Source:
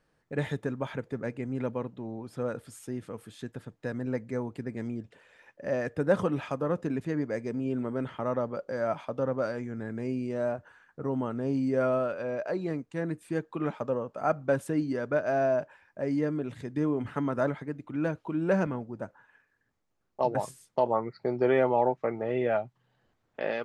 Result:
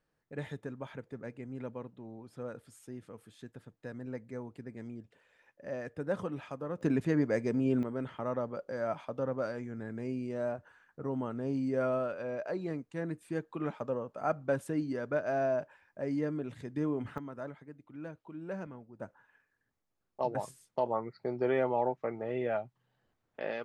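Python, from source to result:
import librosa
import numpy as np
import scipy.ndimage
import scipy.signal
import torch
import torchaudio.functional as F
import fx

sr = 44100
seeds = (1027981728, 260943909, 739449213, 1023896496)

y = fx.gain(x, sr, db=fx.steps((0.0, -9.0), (6.81, 2.0), (7.83, -4.5), (17.18, -14.0), (19.0, -5.5)))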